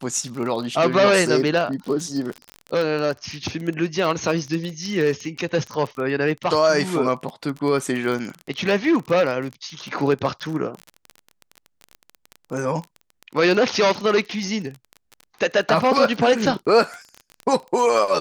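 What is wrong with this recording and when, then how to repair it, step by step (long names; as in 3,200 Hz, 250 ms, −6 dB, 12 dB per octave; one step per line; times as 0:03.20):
surface crackle 25 per second −26 dBFS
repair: click removal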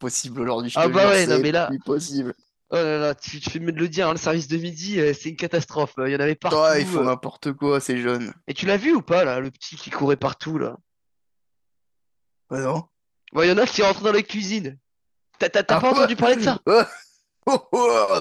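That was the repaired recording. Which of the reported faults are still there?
none of them is left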